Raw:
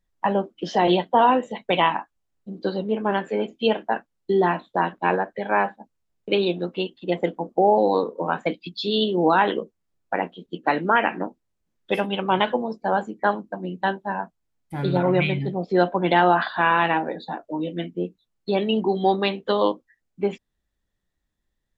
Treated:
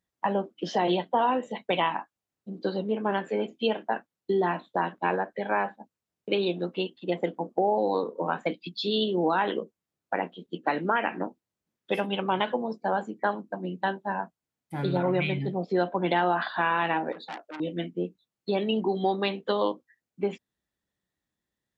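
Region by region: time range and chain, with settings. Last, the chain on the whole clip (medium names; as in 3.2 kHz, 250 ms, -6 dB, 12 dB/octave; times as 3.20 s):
17.12–17.60 s: high-pass 420 Hz 6 dB/octave + transformer saturation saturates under 2.5 kHz
whole clip: high-pass 110 Hz; compression 2:1, threshold -21 dBFS; trim -2.5 dB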